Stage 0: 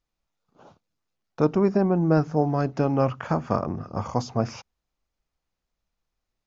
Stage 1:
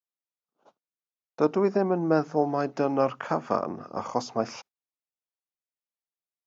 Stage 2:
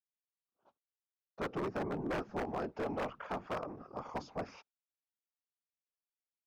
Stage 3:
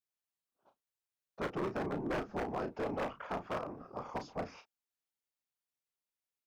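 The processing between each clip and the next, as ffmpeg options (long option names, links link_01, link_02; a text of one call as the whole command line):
ffmpeg -i in.wav -af "highpass=280,agate=range=-19dB:threshold=-49dB:ratio=16:detection=peak" out.wav
ffmpeg -i in.wav -af "lowpass=3800,afftfilt=real='hypot(re,im)*cos(2*PI*random(0))':imag='hypot(re,im)*sin(2*PI*random(1))':win_size=512:overlap=0.75,aeval=exprs='0.0531*(abs(mod(val(0)/0.0531+3,4)-2)-1)':channel_layout=same,volume=-4.5dB" out.wav
ffmpeg -i in.wav -filter_complex "[0:a]asplit=2[link_01][link_02];[link_02]adelay=34,volume=-8.5dB[link_03];[link_01][link_03]amix=inputs=2:normalize=0" out.wav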